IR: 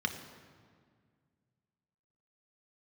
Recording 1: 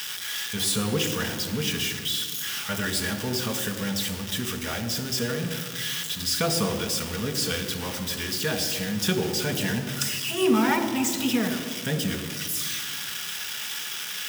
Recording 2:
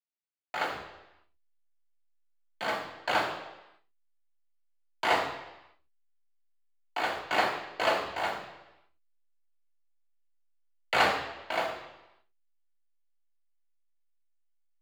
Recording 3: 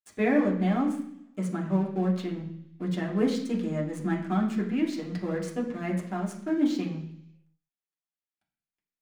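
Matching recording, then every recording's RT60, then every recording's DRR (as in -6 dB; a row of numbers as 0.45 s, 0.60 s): 1; 1.9 s, 0.95 s, 0.70 s; 4.5 dB, -3.0 dB, -3.5 dB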